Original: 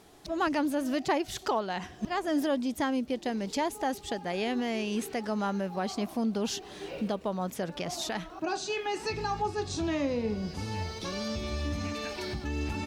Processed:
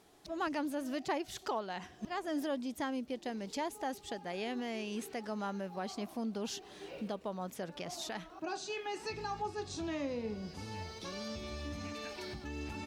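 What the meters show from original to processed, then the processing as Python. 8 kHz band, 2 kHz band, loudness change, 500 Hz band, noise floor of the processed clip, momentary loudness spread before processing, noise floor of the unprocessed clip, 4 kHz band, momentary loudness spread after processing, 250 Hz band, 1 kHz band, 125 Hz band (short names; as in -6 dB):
-7.0 dB, -7.0 dB, -7.5 dB, -7.5 dB, -56 dBFS, 6 LU, -48 dBFS, -7.0 dB, 6 LU, -8.0 dB, -7.0 dB, -10.0 dB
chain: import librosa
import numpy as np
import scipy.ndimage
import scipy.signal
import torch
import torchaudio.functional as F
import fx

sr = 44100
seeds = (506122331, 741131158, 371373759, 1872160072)

y = fx.low_shelf(x, sr, hz=140.0, db=-5.0)
y = F.gain(torch.from_numpy(y), -7.0).numpy()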